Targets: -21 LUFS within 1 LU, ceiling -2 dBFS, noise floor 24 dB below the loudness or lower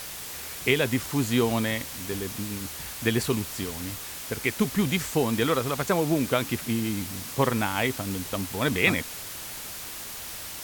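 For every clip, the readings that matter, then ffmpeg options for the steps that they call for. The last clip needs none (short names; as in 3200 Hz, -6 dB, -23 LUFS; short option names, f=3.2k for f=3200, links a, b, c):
noise floor -38 dBFS; noise floor target -52 dBFS; loudness -27.5 LUFS; peak -5.0 dBFS; loudness target -21.0 LUFS
-> -af "afftdn=nr=14:nf=-38"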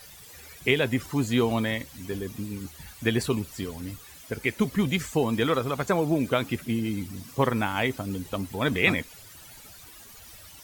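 noise floor -48 dBFS; noise floor target -52 dBFS
-> -af "afftdn=nr=6:nf=-48"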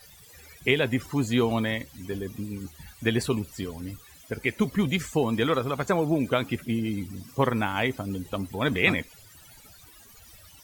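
noise floor -52 dBFS; loudness -27.5 LUFS; peak -5.0 dBFS; loudness target -21.0 LUFS
-> -af "volume=6.5dB,alimiter=limit=-2dB:level=0:latency=1"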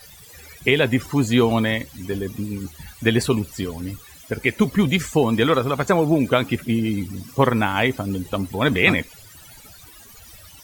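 loudness -21.0 LUFS; peak -2.0 dBFS; noise floor -45 dBFS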